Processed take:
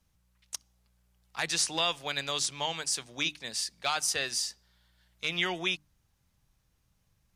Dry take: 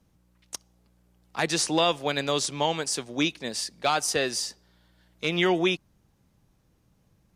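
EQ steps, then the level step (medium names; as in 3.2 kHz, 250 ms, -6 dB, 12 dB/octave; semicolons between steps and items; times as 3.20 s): peaking EQ 330 Hz -13 dB 2.8 oct; hum notches 50/100/150/200/250/300 Hz; -1.0 dB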